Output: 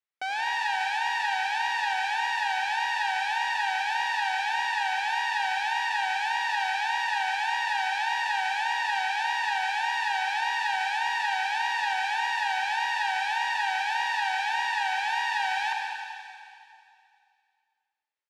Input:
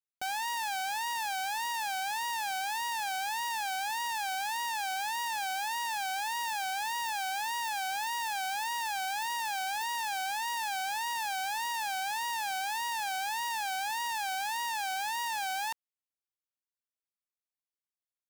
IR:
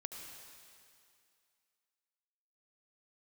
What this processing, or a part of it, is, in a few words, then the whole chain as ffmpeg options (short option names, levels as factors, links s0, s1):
station announcement: -filter_complex "[0:a]highpass=380,lowpass=3900,equalizer=f=2000:t=o:w=0.58:g=5,aecho=1:1:87.46|174.9:0.282|0.355[s0];[1:a]atrim=start_sample=2205[s1];[s0][s1]afir=irnorm=-1:irlink=0,volume=2.37"